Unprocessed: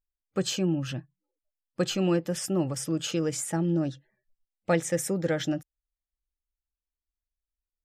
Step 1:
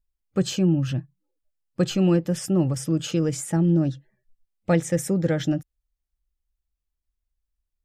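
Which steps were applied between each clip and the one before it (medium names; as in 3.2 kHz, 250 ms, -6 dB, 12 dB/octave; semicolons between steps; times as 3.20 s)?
bass shelf 240 Hz +12 dB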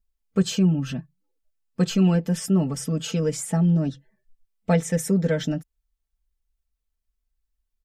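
comb 4.5 ms, depth 96%; trim -2 dB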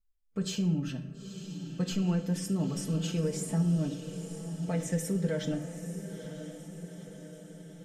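peak limiter -15.5 dBFS, peak gain reduction 7.5 dB; echo that smears into a reverb 920 ms, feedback 58%, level -10 dB; on a send at -6.5 dB: reverberation RT60 0.90 s, pre-delay 6 ms; on the sum: trim -8 dB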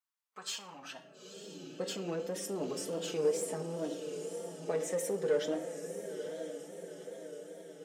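in parallel at -10 dB: wavefolder -31 dBFS; on the sum: high-pass sweep 1 kHz -> 430 Hz, 0.73–1.50 s; wow and flutter 82 cents; trim -3 dB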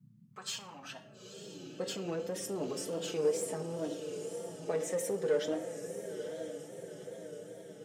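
band noise 110–220 Hz -61 dBFS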